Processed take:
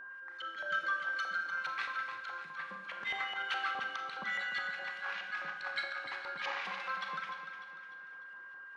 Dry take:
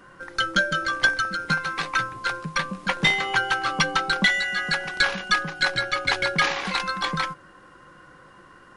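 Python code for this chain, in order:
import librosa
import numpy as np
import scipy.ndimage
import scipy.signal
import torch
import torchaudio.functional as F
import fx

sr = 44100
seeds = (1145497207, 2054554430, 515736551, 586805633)

p1 = fx.filter_lfo_bandpass(x, sr, shape='saw_up', hz=4.8, low_hz=820.0, high_hz=3000.0, q=1.5)
p2 = fx.auto_swell(p1, sr, attack_ms=103.0)
p3 = fx.rev_schroeder(p2, sr, rt60_s=0.85, comb_ms=28, drr_db=4.5)
p4 = p3 + 10.0 ** (-38.0 / 20.0) * np.sin(2.0 * np.pi * 1600.0 * np.arange(len(p3)) / sr)
p5 = p4 + fx.echo_feedback(p4, sr, ms=299, feedback_pct=47, wet_db=-9.5, dry=0)
y = F.gain(torch.from_numpy(p5), -7.5).numpy()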